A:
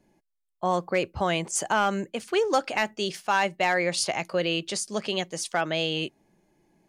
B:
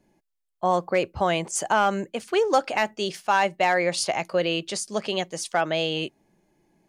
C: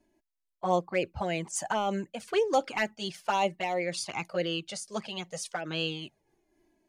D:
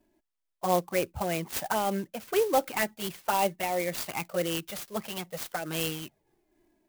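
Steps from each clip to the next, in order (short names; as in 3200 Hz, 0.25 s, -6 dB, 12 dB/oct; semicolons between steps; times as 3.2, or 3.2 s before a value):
dynamic EQ 700 Hz, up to +4 dB, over -35 dBFS, Q 0.88
envelope flanger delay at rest 3.1 ms, full sweep at -16.5 dBFS; noise-modulated level, depth 65%
clock jitter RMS 0.049 ms; gain +1 dB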